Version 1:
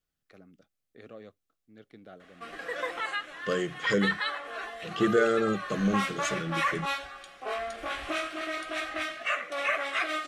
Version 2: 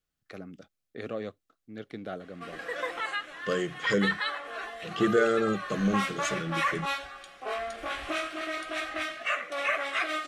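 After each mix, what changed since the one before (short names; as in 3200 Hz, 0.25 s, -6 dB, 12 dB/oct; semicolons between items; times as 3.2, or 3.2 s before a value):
first voice +11.5 dB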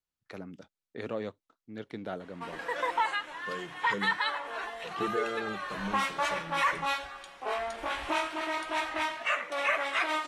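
second voice -11.0 dB; master: remove Butterworth band-stop 930 Hz, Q 4.4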